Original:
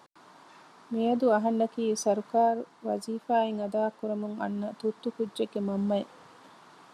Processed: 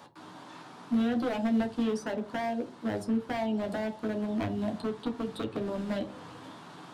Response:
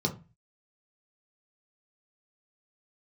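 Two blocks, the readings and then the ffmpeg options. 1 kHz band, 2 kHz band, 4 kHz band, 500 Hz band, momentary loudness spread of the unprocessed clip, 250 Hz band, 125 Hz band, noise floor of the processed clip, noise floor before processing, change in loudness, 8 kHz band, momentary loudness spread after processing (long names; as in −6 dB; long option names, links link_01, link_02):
−7.0 dB, +1.5 dB, 0.0 dB, −6.5 dB, 9 LU, +1.0 dB, can't be measured, −49 dBFS, −57 dBFS, −2.5 dB, −10.0 dB, 19 LU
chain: -filter_complex "[0:a]acrossover=split=1000|2200[link_01][link_02][link_03];[link_01]acompressor=threshold=-35dB:ratio=4[link_04];[link_02]acompressor=threshold=-50dB:ratio=4[link_05];[link_03]acompressor=threshold=-55dB:ratio=4[link_06];[link_04][link_05][link_06]amix=inputs=3:normalize=0,aeval=exprs='0.0251*(abs(mod(val(0)/0.0251+3,4)-2)-1)':channel_layout=same,asplit=2[link_07][link_08];[1:a]atrim=start_sample=2205,asetrate=31311,aresample=44100,adelay=11[link_09];[link_08][link_09]afir=irnorm=-1:irlink=0,volume=-11.5dB[link_10];[link_07][link_10]amix=inputs=2:normalize=0,volume=3.5dB"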